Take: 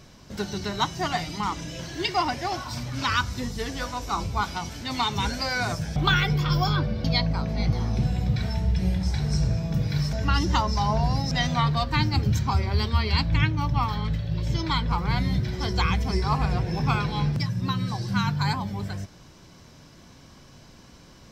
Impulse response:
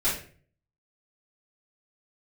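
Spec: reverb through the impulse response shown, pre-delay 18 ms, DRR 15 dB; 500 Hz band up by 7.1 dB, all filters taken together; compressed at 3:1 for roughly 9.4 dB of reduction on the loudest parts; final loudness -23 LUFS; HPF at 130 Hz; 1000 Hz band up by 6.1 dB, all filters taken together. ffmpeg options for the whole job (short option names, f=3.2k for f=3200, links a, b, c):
-filter_complex "[0:a]highpass=130,equalizer=f=500:t=o:g=8,equalizer=f=1k:t=o:g=5,acompressor=threshold=-27dB:ratio=3,asplit=2[a][b];[1:a]atrim=start_sample=2205,adelay=18[c];[b][c]afir=irnorm=-1:irlink=0,volume=-25.5dB[d];[a][d]amix=inputs=2:normalize=0,volume=7dB"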